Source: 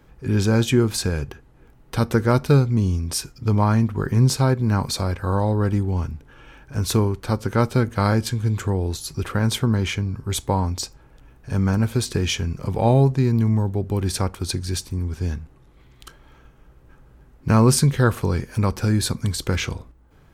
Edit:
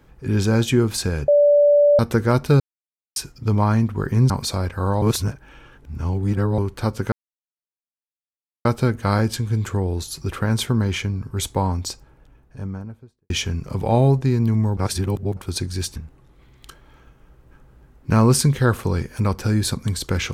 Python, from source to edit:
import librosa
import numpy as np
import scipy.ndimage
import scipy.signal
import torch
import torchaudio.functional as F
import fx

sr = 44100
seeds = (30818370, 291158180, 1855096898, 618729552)

y = fx.studio_fade_out(x, sr, start_s=10.7, length_s=1.53)
y = fx.edit(y, sr, fx.bleep(start_s=1.28, length_s=0.71, hz=582.0, db=-10.5),
    fx.silence(start_s=2.6, length_s=0.56),
    fx.cut(start_s=4.3, length_s=0.46),
    fx.reverse_span(start_s=5.48, length_s=1.56),
    fx.insert_silence(at_s=7.58, length_s=1.53),
    fx.reverse_span(start_s=13.7, length_s=0.6),
    fx.cut(start_s=14.89, length_s=0.45), tone=tone)